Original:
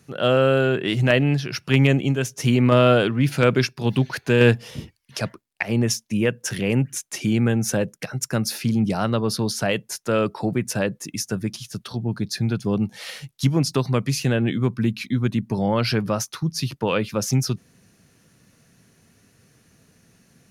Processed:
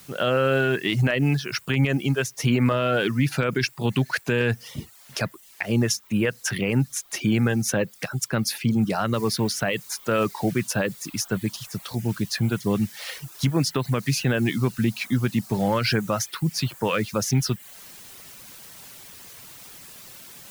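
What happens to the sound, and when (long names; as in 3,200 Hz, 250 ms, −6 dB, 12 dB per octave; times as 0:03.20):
0:09.14: noise floor change −49 dB −43 dB
whole clip: reverb reduction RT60 0.53 s; dynamic equaliser 1,700 Hz, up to +5 dB, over −37 dBFS, Q 0.91; brickwall limiter −12 dBFS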